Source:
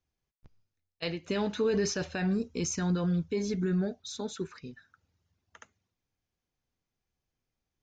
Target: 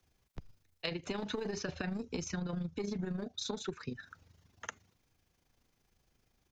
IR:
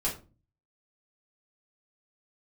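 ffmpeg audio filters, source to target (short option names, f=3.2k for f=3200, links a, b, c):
-filter_complex "[0:a]acrossover=split=140|770[a][b][c];[b]aeval=exprs='clip(val(0),-1,0.0251)':c=same[d];[a][d][c]amix=inputs=3:normalize=0,acrossover=split=84|5400[e][f][g];[e]acompressor=threshold=-50dB:ratio=4[h];[f]acompressor=threshold=-31dB:ratio=4[i];[g]acompressor=threshold=-56dB:ratio=4[j];[h][i][j]amix=inputs=3:normalize=0,atempo=1.2,tremolo=f=26:d=0.571,acompressor=threshold=-51dB:ratio=5,volume=14.5dB"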